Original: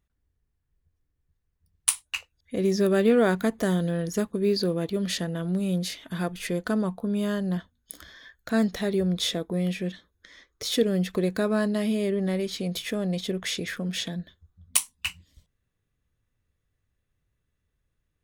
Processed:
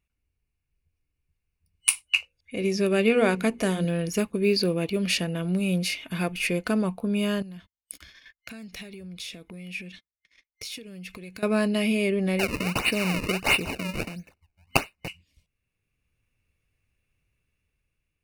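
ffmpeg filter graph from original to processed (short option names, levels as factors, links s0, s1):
-filter_complex "[0:a]asettb=1/sr,asplit=3[s0][s1][s2];[s0]atrim=end=2.094[s3];[s1]atrim=start=2.09:end=3.85,asetpts=PTS-STARTPTS,afade=t=in:d=0.004:c=qsin,afade=t=out:st=1.756:d=0.004:c=qsin,lowpass=f=12000:w=0.5412,lowpass=f=12000:w=1.3066,bandreject=f=60:t=h:w=6,bandreject=f=120:t=h:w=6,bandreject=f=180:t=h:w=6,bandreject=f=240:t=h:w=6,bandreject=f=300:t=h:w=6,bandreject=f=360:t=h:w=6,bandreject=f=420:t=h:w=6,bandreject=f=480:t=h:w=6,bandreject=f=540:t=h:w=6[s4];[s2]atrim=start=3.846[s5];[s3][s4]acrossfade=d=0.004:c1=hsin:c2=qsin[s6];[s6][s5]acrossfade=d=0.004:c1=qsin:c2=hsin,asettb=1/sr,asplit=3[s7][s8][s9];[s7]atrim=end=7.424[s10];[s8]atrim=start=7.42:end=11.43,asetpts=PTS-STARTPTS,afade=t=in:d=0.004:c=qsin,afade=t=out:st=4.006:d=0.004:c=qsin,agate=range=0.02:threshold=0.00316:ratio=16:release=100:detection=peak,acompressor=threshold=0.0158:ratio=6:attack=3.2:release=140:knee=1:detection=peak,equalizer=f=580:w=0.44:g=-7.5[s11];[s9]atrim=start=11.426[s12];[s10][s11]acrossfade=d=0.004:c1=hsin:c2=qsin[s13];[s13][s12]acrossfade=d=0.004:c1=qsin:c2=hsin,asettb=1/sr,asplit=3[s14][s15][s16];[s14]atrim=end=12.394[s17];[s15]atrim=start=12.39:end=15.08,asetpts=PTS-STARTPTS,afade=t=in:d=0.004:c=qsin,afade=t=out:st=2.686:d=0.004:c=qsin,highshelf=f=4000:g=8,acrusher=samples=33:mix=1:aa=0.000001:lfo=1:lforange=52.8:lforate=1.5,asuperstop=centerf=3300:order=8:qfactor=6.5[s18];[s16]atrim=start=15.076[s19];[s17][s18]acrossfade=d=0.004:c1=hsin:c2=qsin[s20];[s20][s19]acrossfade=d=0.004:c1=qsin:c2=hsin,dynaudnorm=f=280:g=7:m=1.78,superequalizer=12b=3.98:14b=1.41:16b=1.58,volume=0.631"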